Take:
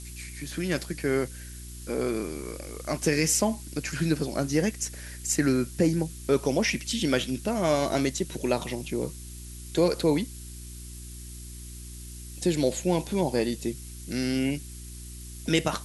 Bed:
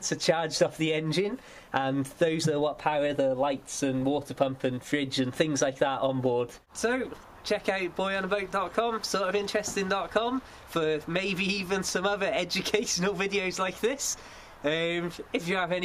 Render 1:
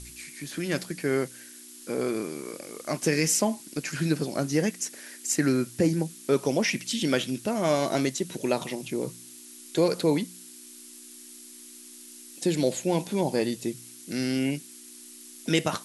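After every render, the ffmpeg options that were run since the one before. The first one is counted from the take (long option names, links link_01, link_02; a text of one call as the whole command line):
ffmpeg -i in.wav -af "bandreject=frequency=60:width_type=h:width=4,bandreject=frequency=120:width_type=h:width=4,bandreject=frequency=180:width_type=h:width=4" out.wav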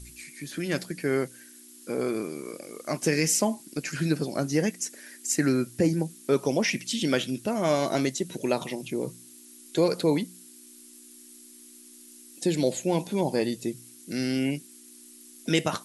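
ffmpeg -i in.wav -af "afftdn=noise_reduction=6:noise_floor=-47" out.wav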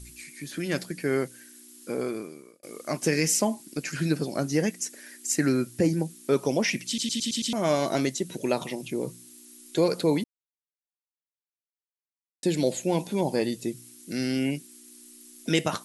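ffmpeg -i in.wav -filter_complex "[0:a]asplit=10[link_01][link_02][link_03][link_04][link_05][link_06][link_07][link_08][link_09][link_10];[link_01]atrim=end=2.63,asetpts=PTS-STARTPTS,afade=type=out:start_time=1.9:duration=0.73[link_11];[link_02]atrim=start=2.63:end=6.982,asetpts=PTS-STARTPTS,afade=type=in:duration=0.004:curve=hsin[link_12];[link_03]atrim=start=6.868:end=6.982[link_13];[link_04]atrim=start=6.868:end=6.982[link_14];[link_05]atrim=start=6.868:end=6.982[link_15];[link_06]atrim=start=6.868:end=6.982[link_16];[link_07]atrim=start=6.868:end=6.982[link_17];[link_08]atrim=start=7.528:end=10.24,asetpts=PTS-STARTPTS,afade=type=out:start_time=2.708:duration=0.004:curve=hsin[link_18];[link_09]atrim=start=10.24:end=12.43,asetpts=PTS-STARTPTS,volume=0[link_19];[link_10]atrim=start=12.43,asetpts=PTS-STARTPTS,afade=type=in:duration=0.004:curve=hsin[link_20];[link_11][link_12]concat=n=2:v=0:a=1[link_21];[link_21][link_13]acrossfade=duration=0.004:curve1=hsin:curve2=hsin[link_22];[link_22][link_14]acrossfade=duration=0.004:curve1=hsin:curve2=hsin[link_23];[link_23][link_15]acrossfade=duration=0.004:curve1=hsin:curve2=hsin[link_24];[link_24][link_16]acrossfade=duration=0.004:curve1=hsin:curve2=hsin[link_25];[link_25][link_17]acrossfade=duration=0.004:curve1=hsin:curve2=hsin[link_26];[link_18][link_19][link_20]concat=n=3:v=0:a=1[link_27];[link_26][link_27]acrossfade=duration=0.004:curve1=hsin:curve2=hsin" out.wav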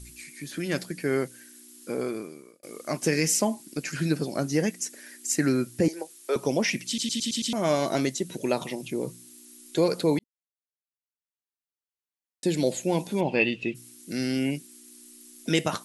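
ffmpeg -i in.wav -filter_complex "[0:a]asettb=1/sr,asplit=3[link_01][link_02][link_03];[link_01]atrim=end=5.884[link_04];[link_02]atrim=start=5.88:end=6.36,asetpts=PTS-STARTPTS,afade=type=in:duration=0.004:curve=qsin,afade=type=out:start_time=0.476:duration=0.004:curve=qsin,highpass=frequency=420:width=0.5412,highpass=frequency=420:width=1.3066[link_05];[link_03]atrim=start=6.356[link_06];[link_04][link_05]acrossfade=duration=0.004:curve1=hsin:curve2=qsin[link_07];[link_07][link_06]acrossfade=duration=0.004:curve1=qsin:curve2=hsin,asplit=3[link_08][link_09][link_10];[link_08]afade=type=out:start_time=13.2:duration=0.02[link_11];[link_09]lowpass=frequency=2700:width_type=q:width=11,afade=type=in:start_time=13.2:duration=0.02,afade=type=out:start_time=13.74:duration=0.02[link_12];[link_10]afade=type=in:start_time=13.74:duration=0.02[link_13];[link_11][link_12][link_13]amix=inputs=3:normalize=0,asplit=2[link_14][link_15];[link_14]atrim=end=10.19,asetpts=PTS-STARTPTS,afade=type=out:start_time=10.186:duration=0.004:curve=hsin[link_16];[link_15]atrim=start=10.19,asetpts=PTS-STARTPTS,afade=type=in:duration=2.36[link_17];[link_16][link_17]concat=n=2:v=0:a=1" out.wav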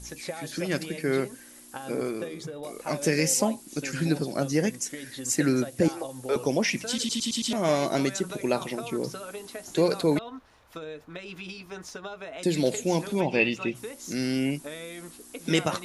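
ffmpeg -i in.wav -i bed.wav -filter_complex "[1:a]volume=-11.5dB[link_01];[0:a][link_01]amix=inputs=2:normalize=0" out.wav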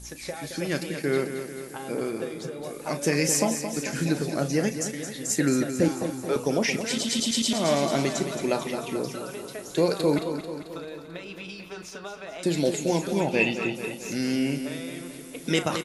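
ffmpeg -i in.wav -filter_complex "[0:a]asplit=2[link_01][link_02];[link_02]adelay=35,volume=-12.5dB[link_03];[link_01][link_03]amix=inputs=2:normalize=0,aecho=1:1:220|440|660|880|1100|1320|1540:0.355|0.209|0.124|0.0729|0.043|0.0254|0.015" out.wav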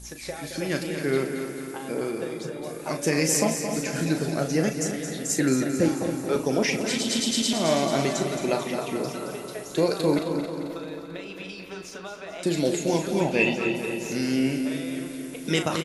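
ffmpeg -i in.wav -filter_complex "[0:a]asplit=2[link_01][link_02];[link_02]adelay=38,volume=-10.5dB[link_03];[link_01][link_03]amix=inputs=2:normalize=0,asplit=2[link_04][link_05];[link_05]adelay=269,lowpass=frequency=3400:poles=1,volume=-9dB,asplit=2[link_06][link_07];[link_07]adelay=269,lowpass=frequency=3400:poles=1,volume=0.54,asplit=2[link_08][link_09];[link_09]adelay=269,lowpass=frequency=3400:poles=1,volume=0.54,asplit=2[link_10][link_11];[link_11]adelay=269,lowpass=frequency=3400:poles=1,volume=0.54,asplit=2[link_12][link_13];[link_13]adelay=269,lowpass=frequency=3400:poles=1,volume=0.54,asplit=2[link_14][link_15];[link_15]adelay=269,lowpass=frequency=3400:poles=1,volume=0.54[link_16];[link_04][link_06][link_08][link_10][link_12][link_14][link_16]amix=inputs=7:normalize=0" out.wav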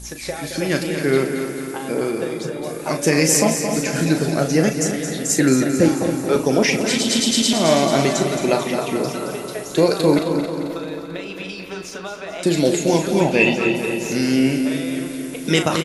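ffmpeg -i in.wav -af "volume=7dB,alimiter=limit=-3dB:level=0:latency=1" out.wav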